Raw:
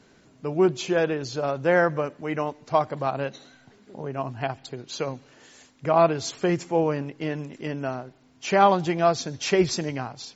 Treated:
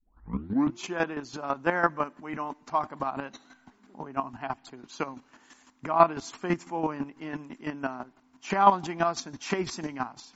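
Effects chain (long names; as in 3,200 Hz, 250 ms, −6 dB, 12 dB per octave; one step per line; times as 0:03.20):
turntable start at the beginning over 0.80 s
square-wave tremolo 6 Hz, depth 65%, duty 20%
octave-band graphic EQ 125/250/500/1,000/4,000 Hz −11/+7/−10/+9/−4 dB
level +1 dB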